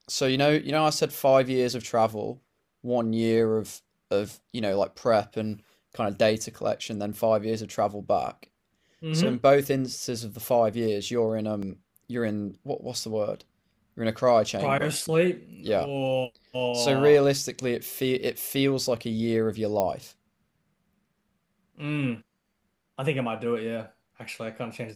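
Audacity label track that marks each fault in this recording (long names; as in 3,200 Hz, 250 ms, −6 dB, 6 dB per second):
11.620000	11.620000	drop-out 4.8 ms
19.800000	19.800000	click −12 dBFS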